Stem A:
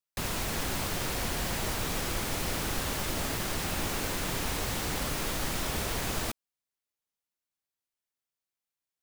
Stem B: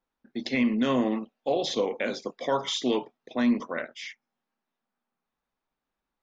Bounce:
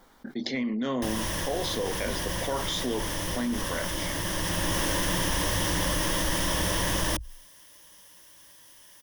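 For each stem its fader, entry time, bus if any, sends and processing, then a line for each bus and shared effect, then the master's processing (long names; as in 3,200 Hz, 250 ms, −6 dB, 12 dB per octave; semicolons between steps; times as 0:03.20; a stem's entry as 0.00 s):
+2.5 dB, 0.85 s, no send, EQ curve with evenly spaced ripples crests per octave 1.2, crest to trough 10 dB; expander for the loud parts 1.5 to 1, over −39 dBFS; automatic ducking −14 dB, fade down 1.60 s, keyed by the second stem
−12.0 dB, 0.00 s, no send, notch filter 2,600 Hz, Q 5.1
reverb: not used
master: envelope flattener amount 70%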